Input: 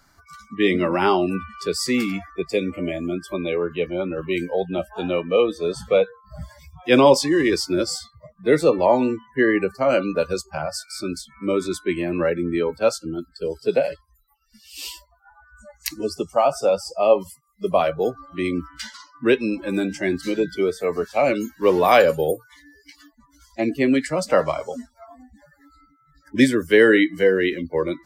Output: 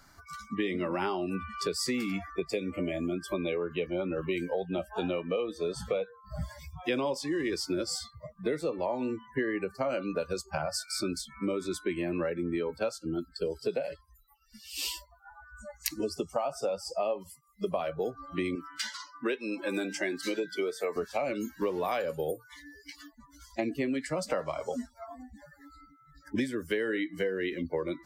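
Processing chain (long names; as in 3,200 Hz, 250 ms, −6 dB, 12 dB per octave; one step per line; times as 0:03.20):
0:18.55–0:20.96: Bessel high-pass filter 420 Hz, order 2
downward compressor 10 to 1, threshold −28 dBFS, peak gain reduction 19.5 dB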